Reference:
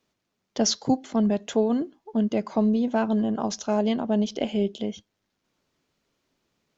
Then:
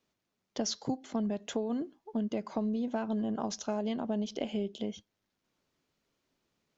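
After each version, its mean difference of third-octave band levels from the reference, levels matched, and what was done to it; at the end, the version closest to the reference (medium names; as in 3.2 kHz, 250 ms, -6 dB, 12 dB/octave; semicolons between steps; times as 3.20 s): 1.5 dB: compression, threshold -24 dBFS, peak gain reduction 8 dB; trim -5 dB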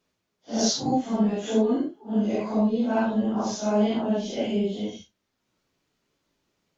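4.5 dB: phase randomisation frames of 200 ms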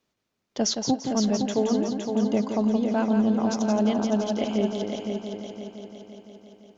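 6.5 dB: multi-head delay 171 ms, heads first and third, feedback 60%, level -6.5 dB; trim -2 dB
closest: first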